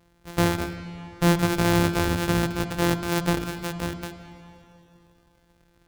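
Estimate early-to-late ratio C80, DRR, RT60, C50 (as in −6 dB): 10.5 dB, 9.0 dB, 2.9 s, 10.0 dB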